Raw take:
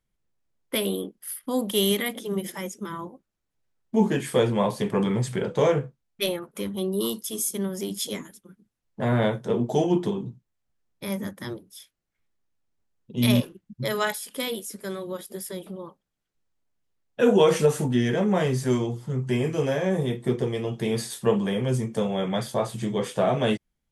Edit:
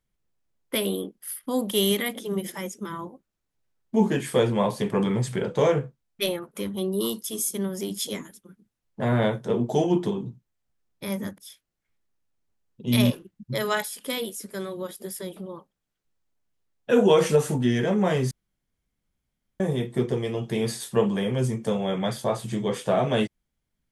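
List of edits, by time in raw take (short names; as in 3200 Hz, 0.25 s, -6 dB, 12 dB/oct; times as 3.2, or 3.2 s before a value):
11.38–11.68 cut
18.61–19.9 room tone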